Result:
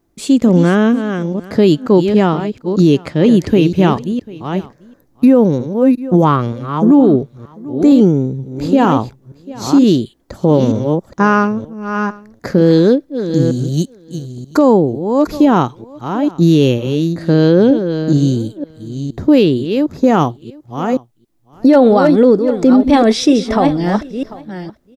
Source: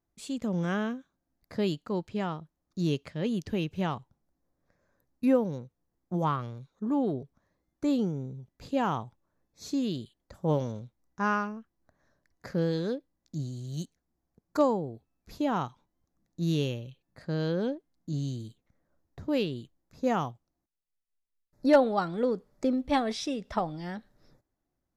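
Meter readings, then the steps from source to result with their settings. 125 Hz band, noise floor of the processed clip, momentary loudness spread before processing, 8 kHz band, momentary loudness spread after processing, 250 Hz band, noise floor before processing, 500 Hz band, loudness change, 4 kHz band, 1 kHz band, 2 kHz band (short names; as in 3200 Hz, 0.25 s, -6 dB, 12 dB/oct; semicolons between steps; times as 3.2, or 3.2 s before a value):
+18.0 dB, -52 dBFS, 15 LU, n/a, 14 LU, +20.0 dB, -83 dBFS, +18.0 dB, +18.0 dB, +15.5 dB, +15.0 dB, +14.5 dB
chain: reverse delay 0.466 s, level -9.5 dB; bell 320 Hz +8 dB 1.3 oct; on a send: echo 0.743 s -23.5 dB; on the sum: maximiser +17.5 dB; gain -1 dB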